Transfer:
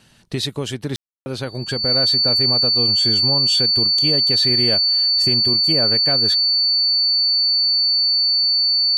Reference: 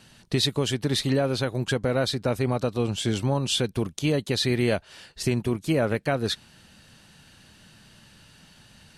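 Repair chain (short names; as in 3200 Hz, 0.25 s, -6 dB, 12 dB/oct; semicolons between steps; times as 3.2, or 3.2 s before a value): notch 4500 Hz, Q 30; room tone fill 0.96–1.26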